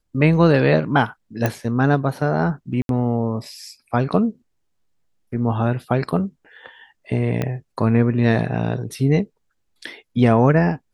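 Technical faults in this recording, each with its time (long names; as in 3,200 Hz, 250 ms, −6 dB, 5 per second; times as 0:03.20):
0:01.46: click −7 dBFS
0:02.82–0:02.89: drop-out 72 ms
0:07.42: click −10 dBFS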